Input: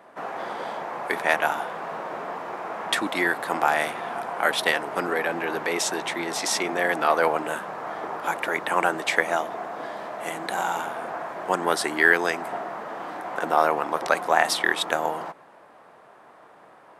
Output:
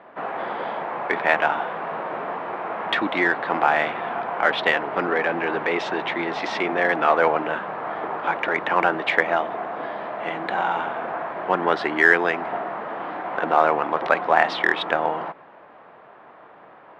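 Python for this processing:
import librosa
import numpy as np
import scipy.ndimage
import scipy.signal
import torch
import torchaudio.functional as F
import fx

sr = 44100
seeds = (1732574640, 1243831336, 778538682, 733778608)

p1 = scipy.signal.sosfilt(scipy.signal.butter(4, 3300.0, 'lowpass', fs=sr, output='sos'), x)
p2 = 10.0 ** (-21.0 / 20.0) * np.tanh(p1 / 10.0 ** (-21.0 / 20.0))
p3 = p1 + F.gain(torch.from_numpy(p2), -10.5).numpy()
y = F.gain(torch.from_numpy(p3), 1.5).numpy()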